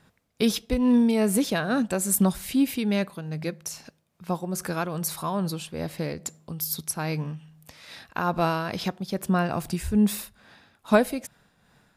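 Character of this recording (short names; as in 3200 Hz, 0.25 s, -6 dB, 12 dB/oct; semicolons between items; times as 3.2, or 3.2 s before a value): tremolo triangle 2.4 Hz, depth 55%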